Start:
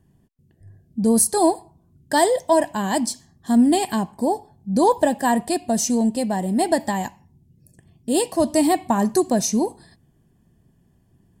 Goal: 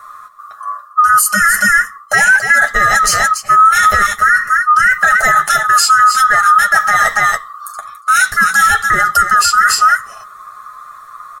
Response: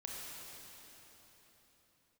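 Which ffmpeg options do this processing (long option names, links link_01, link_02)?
-filter_complex "[0:a]afftfilt=real='real(if(lt(b,960),b+48*(1-2*mod(floor(b/48),2)),b),0)':imag='imag(if(lt(b,960),b+48*(1-2*mod(floor(b/48),2)),b),0)':win_size=2048:overlap=0.75,aecho=1:1:4.8:0.34,asplit=2[link_01][link_02];[link_02]aecho=0:1:283:0.251[link_03];[link_01][link_03]amix=inputs=2:normalize=0,adynamicequalizer=threshold=0.00708:dfrequency=220:dqfactor=0.73:tfrequency=220:tqfactor=0.73:attack=5:release=100:ratio=0.375:range=3:mode=boostabove:tftype=bell,areverse,acompressor=threshold=-30dB:ratio=5,areverse,flanger=delay=8.4:depth=1.7:regen=-13:speed=1.1:shape=sinusoidal,alimiter=level_in=29dB:limit=-1dB:release=50:level=0:latency=1,volume=-1dB"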